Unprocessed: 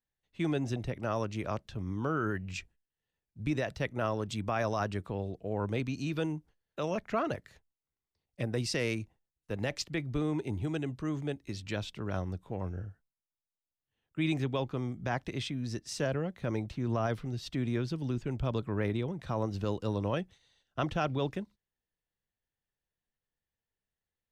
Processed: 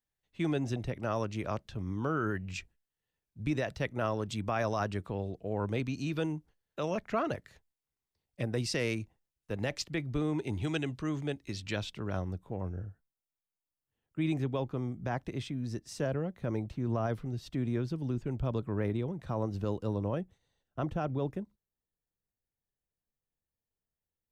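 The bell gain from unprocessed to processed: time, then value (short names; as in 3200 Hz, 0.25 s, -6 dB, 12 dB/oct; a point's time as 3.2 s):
bell 3700 Hz 2.8 oct
10.34 s -0.5 dB
10.67 s +10 dB
11.08 s +3 dB
11.74 s +3 dB
12.53 s -7 dB
19.78 s -7 dB
20.18 s -13.5 dB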